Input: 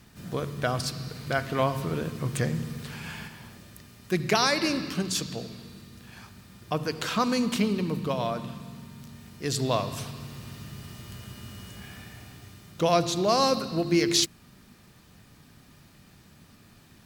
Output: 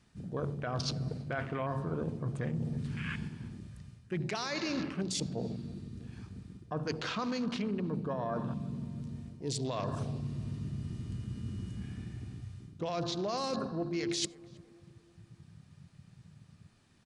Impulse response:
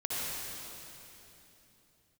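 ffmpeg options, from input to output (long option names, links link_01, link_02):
-filter_complex "[0:a]afwtdn=0.0126,alimiter=limit=-19.5dB:level=0:latency=1:release=21,areverse,acompressor=threshold=-37dB:ratio=6,areverse,asplit=2[link_01][link_02];[link_02]adelay=324,lowpass=frequency=1200:poles=1,volume=-20dB,asplit=2[link_03][link_04];[link_04]adelay=324,lowpass=frequency=1200:poles=1,volume=0.55,asplit=2[link_05][link_06];[link_06]adelay=324,lowpass=frequency=1200:poles=1,volume=0.55,asplit=2[link_07][link_08];[link_08]adelay=324,lowpass=frequency=1200:poles=1,volume=0.55[link_09];[link_01][link_03][link_05][link_07][link_09]amix=inputs=5:normalize=0,asplit=2[link_10][link_11];[1:a]atrim=start_sample=2205,atrim=end_sample=4410[link_12];[link_11][link_12]afir=irnorm=-1:irlink=0,volume=-26.5dB[link_13];[link_10][link_13]amix=inputs=2:normalize=0,aresample=22050,aresample=44100,volume=4.5dB"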